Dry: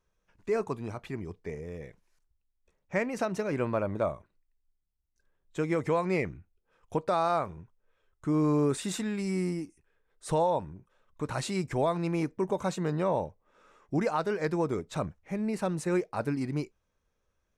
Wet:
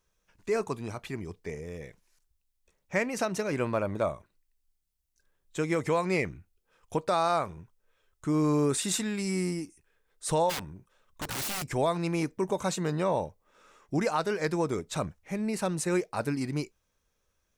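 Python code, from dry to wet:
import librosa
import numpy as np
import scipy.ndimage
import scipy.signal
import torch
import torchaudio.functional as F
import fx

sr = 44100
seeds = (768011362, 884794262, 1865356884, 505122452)

y = fx.high_shelf(x, sr, hz=2900.0, db=9.5)
y = fx.overflow_wrap(y, sr, gain_db=28.0, at=(10.49, 11.62), fade=0.02)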